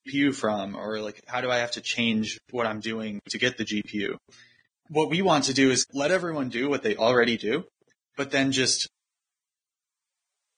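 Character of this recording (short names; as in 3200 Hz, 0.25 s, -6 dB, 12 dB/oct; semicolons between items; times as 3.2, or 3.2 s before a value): tremolo triangle 0.59 Hz, depth 70%; Vorbis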